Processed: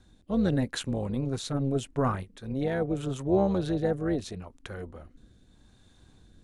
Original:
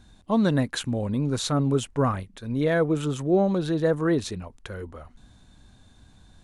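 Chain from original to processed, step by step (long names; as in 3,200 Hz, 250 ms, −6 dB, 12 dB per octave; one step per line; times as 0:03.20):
rotating-speaker cabinet horn 0.8 Hz
amplitude modulation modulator 270 Hz, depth 40%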